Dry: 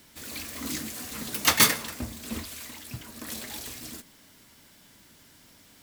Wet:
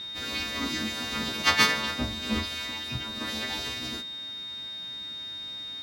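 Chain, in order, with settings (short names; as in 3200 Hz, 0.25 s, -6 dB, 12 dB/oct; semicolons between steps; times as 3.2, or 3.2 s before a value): frequency quantiser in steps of 2 st; in parallel at -1.5 dB: negative-ratio compressor -28 dBFS, ratio -1; on the sum: whine 3700 Hz -29 dBFS; air absorption 240 m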